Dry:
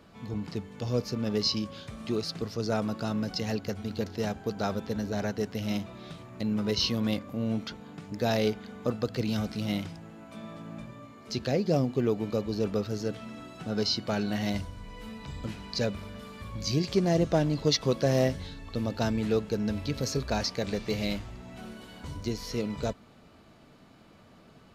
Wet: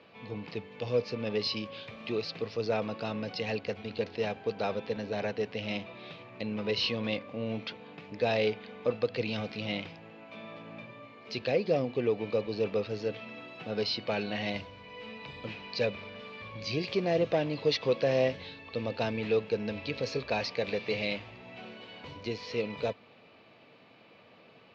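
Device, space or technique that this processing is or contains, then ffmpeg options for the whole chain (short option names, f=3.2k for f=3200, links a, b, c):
overdrive pedal into a guitar cabinet: -filter_complex "[0:a]asplit=2[a][b];[b]highpass=f=720:p=1,volume=12dB,asoftclip=type=tanh:threshold=-13.5dB[c];[a][c]amix=inputs=2:normalize=0,lowpass=f=6k:p=1,volume=-6dB,highpass=98,equalizer=f=110:t=q:w=4:g=6,equalizer=f=490:t=q:w=4:g=7,equalizer=f=1.4k:t=q:w=4:g=-6,equalizer=f=2.5k:t=q:w=4:g=8,lowpass=f=4.5k:w=0.5412,lowpass=f=4.5k:w=1.3066,volume=-5.5dB"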